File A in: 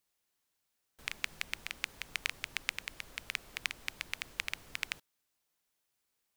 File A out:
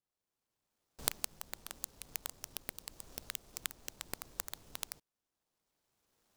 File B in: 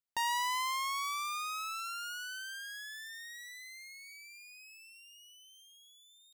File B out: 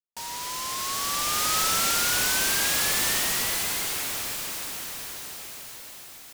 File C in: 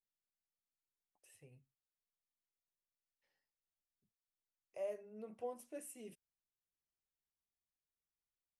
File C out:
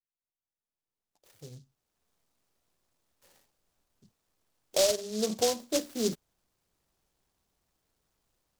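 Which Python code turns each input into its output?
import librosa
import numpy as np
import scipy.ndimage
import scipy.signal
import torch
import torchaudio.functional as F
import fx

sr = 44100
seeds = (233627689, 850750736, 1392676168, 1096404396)

y = fx.recorder_agc(x, sr, target_db=-12.0, rise_db_per_s=14.0, max_gain_db=30)
y = scipy.signal.sosfilt(scipy.signal.bessel(4, 2800.0, 'lowpass', norm='mag', fs=sr, output='sos'), y)
y = fx.noise_mod_delay(y, sr, seeds[0], noise_hz=5100.0, depth_ms=0.15)
y = y * 10.0 ** (-5.5 / 20.0)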